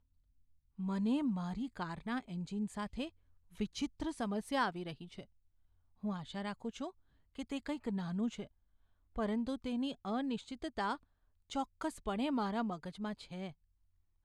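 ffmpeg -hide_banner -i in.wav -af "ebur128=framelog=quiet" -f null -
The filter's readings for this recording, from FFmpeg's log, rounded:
Integrated loudness:
  I:         -39.3 LUFS
  Threshold: -49.7 LUFS
Loudness range:
  LRA:         3.0 LU
  Threshold: -60.3 LUFS
  LRA low:   -42.0 LUFS
  LRA high:  -39.0 LUFS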